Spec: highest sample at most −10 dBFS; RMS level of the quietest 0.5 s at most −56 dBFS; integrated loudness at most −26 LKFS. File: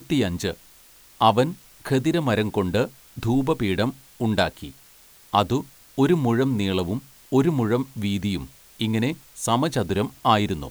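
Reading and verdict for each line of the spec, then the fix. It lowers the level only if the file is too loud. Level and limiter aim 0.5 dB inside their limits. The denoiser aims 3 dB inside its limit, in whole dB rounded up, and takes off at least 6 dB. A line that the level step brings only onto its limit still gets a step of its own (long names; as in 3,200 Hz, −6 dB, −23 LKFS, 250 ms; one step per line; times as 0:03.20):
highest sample −3.0 dBFS: out of spec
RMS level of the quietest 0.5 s −51 dBFS: out of spec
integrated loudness −23.5 LKFS: out of spec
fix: broadband denoise 6 dB, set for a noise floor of −51 dBFS
level −3 dB
brickwall limiter −10.5 dBFS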